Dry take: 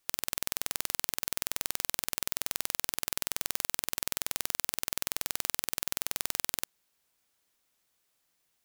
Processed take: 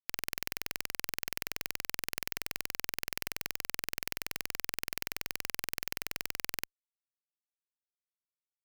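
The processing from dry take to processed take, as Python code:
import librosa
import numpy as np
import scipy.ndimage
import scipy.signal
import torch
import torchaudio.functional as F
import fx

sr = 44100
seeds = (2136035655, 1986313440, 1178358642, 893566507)

y = fx.peak_eq(x, sr, hz=1100.0, db=-11.5, octaves=0.4)
y = fx.fuzz(y, sr, gain_db=34.0, gate_db=-36.0)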